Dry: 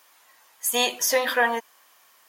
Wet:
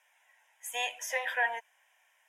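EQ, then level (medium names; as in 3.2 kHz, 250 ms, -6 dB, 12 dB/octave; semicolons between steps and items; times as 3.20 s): high-pass 800 Hz 12 dB/octave; distance through air 63 m; static phaser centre 1.2 kHz, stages 6; -4.0 dB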